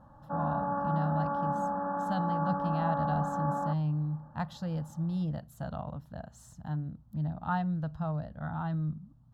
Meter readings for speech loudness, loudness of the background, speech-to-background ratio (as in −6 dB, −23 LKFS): −35.0 LKFS, −33.0 LKFS, −2.0 dB